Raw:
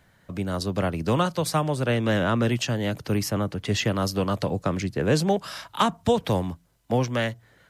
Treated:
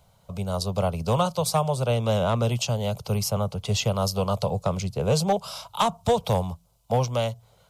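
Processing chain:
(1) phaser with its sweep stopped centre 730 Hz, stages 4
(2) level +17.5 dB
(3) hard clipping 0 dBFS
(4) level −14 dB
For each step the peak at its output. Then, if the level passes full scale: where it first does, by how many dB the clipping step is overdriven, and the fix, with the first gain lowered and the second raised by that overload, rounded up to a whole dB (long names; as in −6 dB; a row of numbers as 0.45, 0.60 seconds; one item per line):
−10.0, +7.5, 0.0, −14.0 dBFS
step 2, 7.5 dB
step 2 +9.5 dB, step 4 −6 dB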